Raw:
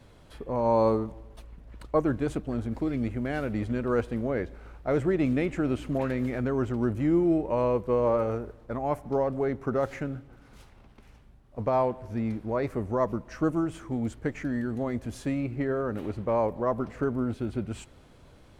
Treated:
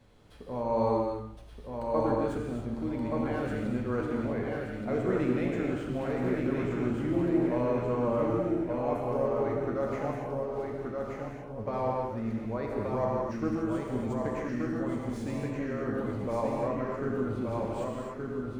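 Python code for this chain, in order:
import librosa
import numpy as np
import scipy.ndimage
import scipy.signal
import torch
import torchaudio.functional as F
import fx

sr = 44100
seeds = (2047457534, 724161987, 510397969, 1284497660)

y = scipy.signal.medfilt(x, 3)
y = fx.echo_feedback(y, sr, ms=1175, feedback_pct=34, wet_db=-3.5)
y = fx.rev_gated(y, sr, seeds[0], gate_ms=300, shape='flat', drr_db=-1.5)
y = y * librosa.db_to_amplitude(-7.5)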